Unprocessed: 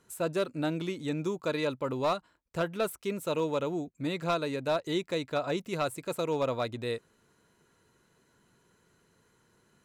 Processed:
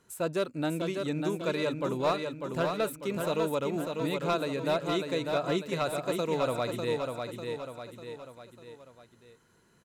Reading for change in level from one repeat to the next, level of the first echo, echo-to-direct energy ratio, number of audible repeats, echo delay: −6.0 dB, −5.0 dB, −4.0 dB, 4, 597 ms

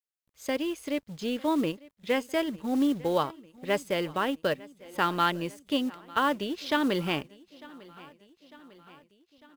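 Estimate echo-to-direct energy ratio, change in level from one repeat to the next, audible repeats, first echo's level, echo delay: −20.0 dB, −4.5 dB, 3, −22.0 dB, 900 ms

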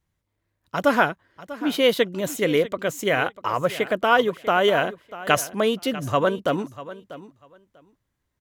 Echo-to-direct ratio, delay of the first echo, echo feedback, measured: −16.0 dB, 643 ms, 17%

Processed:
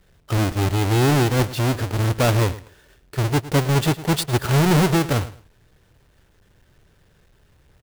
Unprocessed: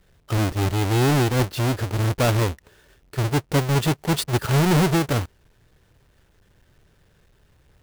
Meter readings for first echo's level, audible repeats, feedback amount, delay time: −16.5 dB, 2, 22%, 108 ms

